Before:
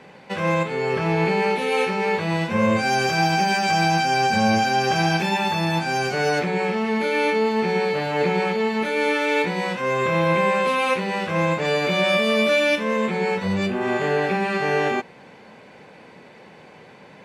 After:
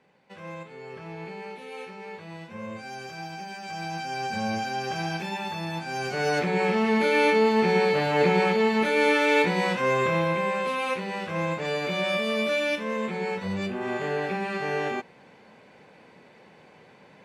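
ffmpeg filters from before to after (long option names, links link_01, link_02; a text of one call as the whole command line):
ffmpeg -i in.wav -af "afade=type=in:start_time=3.58:duration=0.82:silence=0.398107,afade=type=in:start_time=5.86:duration=0.93:silence=0.316228,afade=type=out:start_time=9.82:duration=0.53:silence=0.446684" out.wav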